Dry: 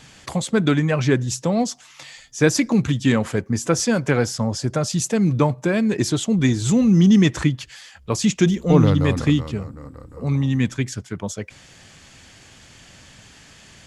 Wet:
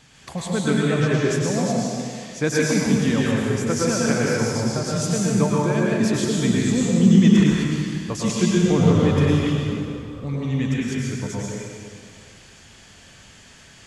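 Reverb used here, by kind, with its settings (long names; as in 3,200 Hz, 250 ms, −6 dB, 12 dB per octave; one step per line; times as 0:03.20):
dense smooth reverb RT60 2.1 s, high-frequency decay 0.95×, pre-delay 90 ms, DRR −5 dB
level −6.5 dB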